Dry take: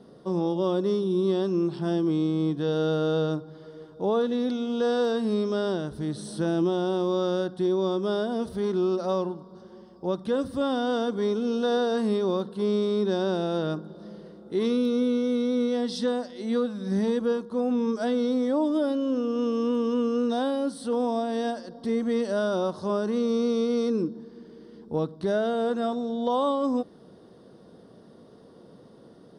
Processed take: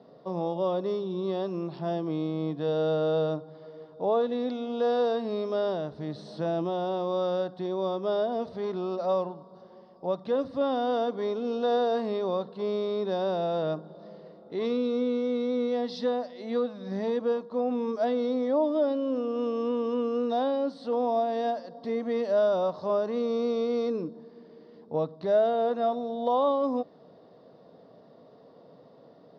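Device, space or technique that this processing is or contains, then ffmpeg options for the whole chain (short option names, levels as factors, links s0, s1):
kitchen radio: -af "highpass=160,equalizer=f=210:t=q:w=4:g=-8,equalizer=f=350:t=q:w=4:g=-9,equalizer=f=650:t=q:w=4:g=6,equalizer=f=1500:t=q:w=4:g=-7,equalizer=f=3200:t=q:w=4:g=-7,lowpass=f=4400:w=0.5412,lowpass=f=4400:w=1.3066"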